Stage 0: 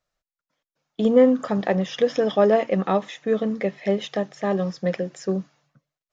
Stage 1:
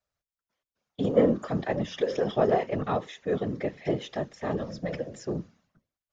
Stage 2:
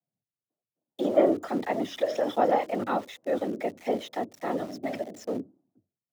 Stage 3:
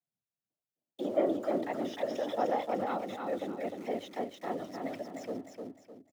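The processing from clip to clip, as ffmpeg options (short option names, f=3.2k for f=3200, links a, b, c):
-af "bandreject=f=60:t=h:w=6,bandreject=f=120:t=h:w=6,bandreject=f=180:t=h:w=6,bandreject=f=240:t=h:w=6,bandreject=f=300:t=h:w=6,bandreject=f=360:t=h:w=6,bandreject=f=420:t=h:w=6,bandreject=f=480:t=h:w=6,bandreject=f=540:t=h:w=6,afftfilt=real='hypot(re,im)*cos(2*PI*random(0))':imag='hypot(re,im)*sin(2*PI*random(1))':win_size=512:overlap=0.75"
-filter_complex "[0:a]afreqshift=93,acrossover=split=260|680[a][b][c];[c]aeval=exprs='val(0)*gte(abs(val(0)),0.00422)':c=same[d];[a][b][d]amix=inputs=3:normalize=0"
-af "aecho=1:1:304|608|912|1216:0.596|0.208|0.073|0.0255,volume=-7.5dB"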